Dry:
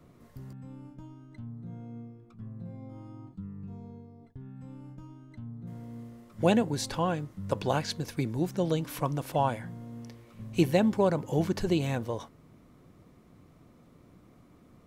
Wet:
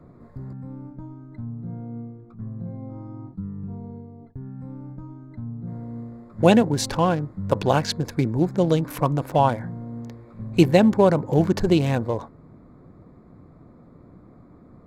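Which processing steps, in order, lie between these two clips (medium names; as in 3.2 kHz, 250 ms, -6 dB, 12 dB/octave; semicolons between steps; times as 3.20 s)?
local Wiener filter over 15 samples; trim +8.5 dB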